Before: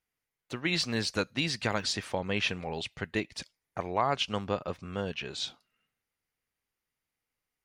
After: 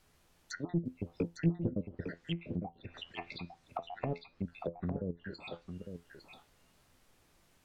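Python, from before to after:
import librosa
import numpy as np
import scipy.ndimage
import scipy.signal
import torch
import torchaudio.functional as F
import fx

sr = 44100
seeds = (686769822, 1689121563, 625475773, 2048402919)

y = fx.spec_dropout(x, sr, seeds[0], share_pct=75)
y = fx.level_steps(y, sr, step_db=13, at=(4.92, 5.34))
y = fx.low_shelf(y, sr, hz=100.0, db=-10.0)
y = fx.env_lowpass_down(y, sr, base_hz=480.0, full_db=-34.0)
y = fx.dmg_noise_colour(y, sr, seeds[1], colour='pink', level_db=-77.0)
y = fx.comb_fb(y, sr, f0_hz=85.0, decay_s=0.2, harmonics='all', damping=0.0, mix_pct=60)
y = 10.0 ** (-35.0 / 20.0) * np.tanh(y / 10.0 ** (-35.0 / 20.0))
y = fx.over_compress(y, sr, threshold_db=-54.0, ratio=-0.5, at=(2.89, 3.37), fade=0.02)
y = fx.env_lowpass_down(y, sr, base_hz=370.0, full_db=-45.5)
y = fx.doubler(y, sr, ms=18.0, db=-6.0, at=(1.09, 1.7))
y = y + 10.0 ** (-8.0 / 20.0) * np.pad(y, (int(855 * sr / 1000.0), 0))[:len(y)]
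y = F.gain(torch.from_numpy(y), 13.0).numpy()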